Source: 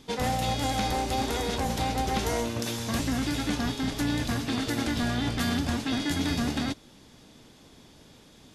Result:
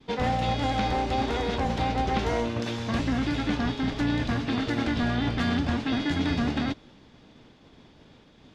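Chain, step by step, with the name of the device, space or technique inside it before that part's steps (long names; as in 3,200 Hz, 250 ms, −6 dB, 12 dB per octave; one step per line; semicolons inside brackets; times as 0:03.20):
hearing-loss simulation (low-pass filter 3,400 Hz 12 dB per octave; downward expander −51 dBFS)
level +2 dB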